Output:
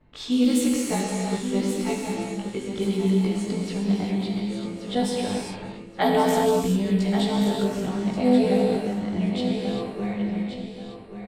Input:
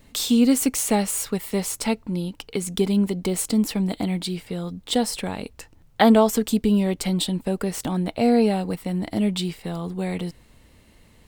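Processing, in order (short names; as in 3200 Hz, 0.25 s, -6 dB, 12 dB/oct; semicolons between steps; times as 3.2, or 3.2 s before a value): short-time reversal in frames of 41 ms; low-pass opened by the level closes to 1600 Hz, open at -17.5 dBFS; feedback echo 1.131 s, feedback 27%, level -9 dB; non-linear reverb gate 0.43 s flat, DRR -1.5 dB; gain -2.5 dB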